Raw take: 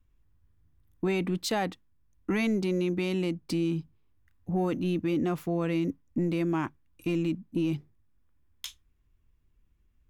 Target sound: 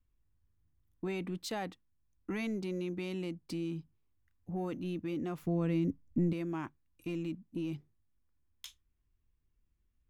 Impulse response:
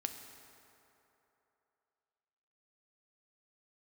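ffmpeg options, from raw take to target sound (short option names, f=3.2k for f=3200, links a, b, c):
-filter_complex "[0:a]asettb=1/sr,asplit=3[a][b][c];[a]atrim=end=5.424[d];[b]atrim=start=5.42:end=6.33,asetpts=PTS-STARTPTS,afade=t=in:d=0.004:c=qsin,afade=t=out:st=0.906:d=0.004:c=qsin,lowshelf=f=280:g=12[e];[c]atrim=start=6.326[f];[d][e]acrossfade=d=0.004:c1=hsin:c2=qsin[g];[g][f]acrossfade=d=0.004:c1=qsin:c2=hsin,volume=-9dB"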